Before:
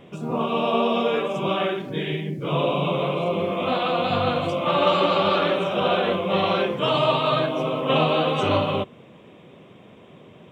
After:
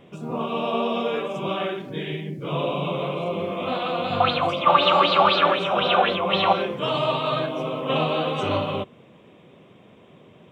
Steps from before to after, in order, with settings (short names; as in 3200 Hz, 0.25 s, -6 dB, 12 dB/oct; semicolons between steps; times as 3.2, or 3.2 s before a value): 4.2–6.53 LFO bell 3.9 Hz 770–4800 Hz +16 dB; gain -3 dB